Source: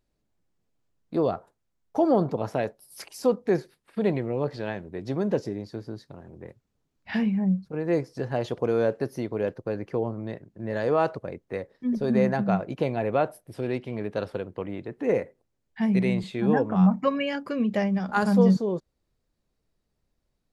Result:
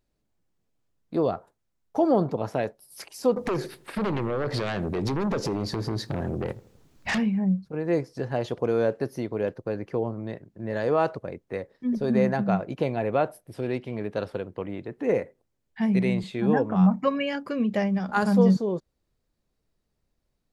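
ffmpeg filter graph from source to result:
-filter_complex "[0:a]asettb=1/sr,asplit=3[s0][s1][s2];[s0]atrim=end=3.364[s3];[s1]atrim=start=3.36:end=7.18,asetpts=PTS-STARTPTS,afade=t=in:d=0.004:c=qsin,afade=t=out:st=3.816:d=0.004:c=qsin,acompressor=threshold=0.0126:ratio=4:attack=3.2:release=140:knee=1:detection=peak,aeval=exprs='0.075*sin(PI/2*5.01*val(0)/0.075)':c=same,asplit=2[s4][s5];[s5]adelay=81,lowpass=f=1100:p=1,volume=0.106,asplit=2[s6][s7];[s7]adelay=81,lowpass=f=1100:p=1,volume=0.48,asplit=2[s8][s9];[s9]adelay=81,lowpass=f=1100:p=1,volume=0.48,asplit=2[s10][s11];[s11]adelay=81,lowpass=f=1100:p=1,volume=0.48[s12];[s4][s6][s8][s10][s12]amix=inputs=5:normalize=0,atrim=end_sample=168462[s13];[s2]atrim=start=7.176[s14];[s3][s13]acrossfade=d=0.004:c1=hsin:c2=qsin[s15];[s15][s14]acrossfade=d=0.004:c1=qsin:c2=hsin"

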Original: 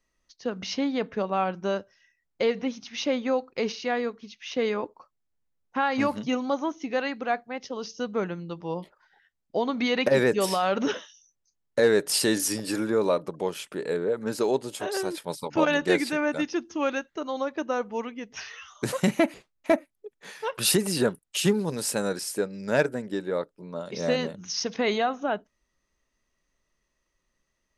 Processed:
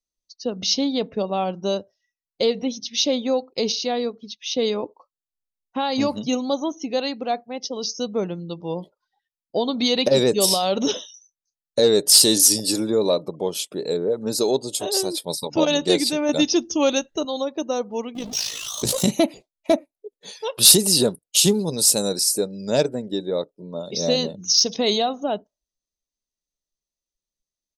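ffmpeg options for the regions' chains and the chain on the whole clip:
-filter_complex "[0:a]asettb=1/sr,asplit=3[s0][s1][s2];[s0]atrim=end=16.294[s3];[s1]atrim=start=16.29:end=17.25,asetpts=PTS-STARTPTS,afade=t=in:d=0.004:c=qsin,afade=t=out:st=0.956:d=0.004:c=qsin,asubboost=boost=6:cutoff=150,acontrast=30[s4];[s2]atrim=start=17.246[s5];[s3][s4]acrossfade=d=0.004:c1=hsin:c2=qsin[s6];[s6][s5]acrossfade=d=0.004:c1=qsin:c2=hsin,asettb=1/sr,asplit=3[s7][s8][s9];[s7]atrim=end=18.154[s10];[s8]atrim=start=18.15:end=19.08,asetpts=PTS-STARTPTS,afade=t=in:d=0.004:c=qsin,afade=t=out:st=0.926:d=0.004:c=qsin,aeval=exprs='val(0)+0.5*0.0282*sgn(val(0))':c=same,tremolo=f=54:d=0.621[s11];[s9]atrim=start=19.076[s12];[s10][s11]acrossfade=d=0.004:c1=hsin:c2=qsin[s13];[s13][s12]acrossfade=d=0.004:c1=qsin:c2=hsin,afftdn=nr=22:nf=-49,firequalizer=gain_entry='entry(650,0);entry(1600,-14);entry(3700,10)':delay=0.05:min_phase=1,acontrast=27,volume=0.891"

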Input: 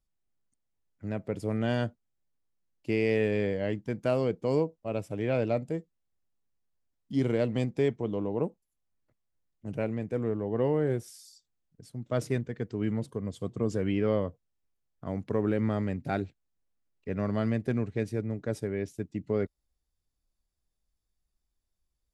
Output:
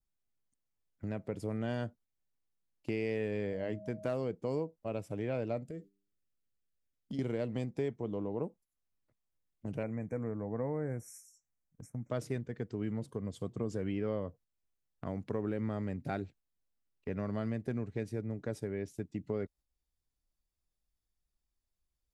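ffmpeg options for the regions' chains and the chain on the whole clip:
-filter_complex "[0:a]asettb=1/sr,asplit=3[s0][s1][s2];[s0]atrim=end=3.514[s3];[s1]atrim=start=3.51:end=4.18,asetpts=PTS-STARTPTS,afade=t=in:d=0.004:c=qsin,afade=t=out:st=0.666:d=0.004:c=qsin,bandreject=f=50:t=h:w=6,bandreject=f=100:t=h:w=6,bandreject=f=150:t=h:w=6,bandreject=f=200:t=h:w=6,volume=8.41,asoftclip=hard,volume=0.119,aeval=exprs='val(0)+0.00631*sin(2*PI*630*n/s)':c=same[s4];[s2]atrim=start=4.176[s5];[s3][s4]acrossfade=d=0.004:c1=hsin:c2=qsin[s6];[s6][s5]acrossfade=d=0.004:c1=qsin:c2=hsin,asettb=1/sr,asplit=3[s7][s8][s9];[s7]atrim=end=5.664[s10];[s8]atrim=start=5.66:end=7.19,asetpts=PTS-STARTPTS,afade=t=in:d=0.004:c=qsin,afade=t=out:st=1.526:d=0.004:c=qsin,bandreject=f=99.06:t=h:w=4,bandreject=f=198.12:t=h:w=4,bandreject=f=297.18:t=h:w=4,bandreject=f=396.24:t=h:w=4,acompressor=threshold=0.0158:ratio=5:attack=3.2:release=140:knee=1:detection=peak,asuperstop=centerf=890:order=4:qfactor=1.7[s11];[s9]atrim=start=7.186[s12];[s10][s11]acrossfade=d=0.004:c1=hsin:c2=qsin[s13];[s13][s12]acrossfade=d=0.004:c1=qsin:c2=hsin,asettb=1/sr,asplit=3[s14][s15][s16];[s14]atrim=end=9.834[s17];[s15]atrim=start=9.83:end=12.1,asetpts=PTS-STARTPTS,afade=t=in:d=0.004:c=qsin,afade=t=out:st=2.266:d=0.004:c=qsin,asuperstop=centerf=3700:order=20:qfactor=1.2,equalizer=f=380:t=o:w=0.25:g=-11.5[s18];[s16]atrim=start=12.096[s19];[s17][s18]acrossfade=d=0.004:c1=hsin:c2=qsin[s20];[s20][s19]acrossfade=d=0.004:c1=qsin:c2=hsin,agate=range=0.398:threshold=0.00282:ratio=16:detection=peak,adynamicequalizer=threshold=0.00224:dfrequency=3000:dqfactor=1.1:tfrequency=3000:tqfactor=1.1:attack=5:release=100:ratio=0.375:range=2:mode=cutabove:tftype=bell,acompressor=threshold=0.00631:ratio=2,volume=1.5"

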